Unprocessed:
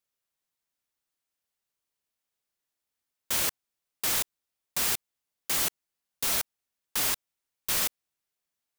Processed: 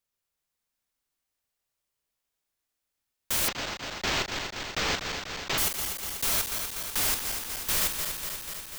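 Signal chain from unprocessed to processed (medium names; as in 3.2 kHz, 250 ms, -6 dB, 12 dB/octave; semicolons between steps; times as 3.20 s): backward echo that repeats 122 ms, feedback 84%, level -7 dB; bass shelf 71 Hz +10.5 dB; 3.48–5.58 s: decimation joined by straight lines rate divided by 4×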